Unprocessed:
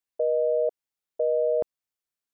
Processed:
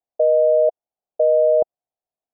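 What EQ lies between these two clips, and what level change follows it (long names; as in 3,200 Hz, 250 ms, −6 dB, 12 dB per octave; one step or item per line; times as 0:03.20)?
low-pass with resonance 710 Hz, resonance Q 4.9
0.0 dB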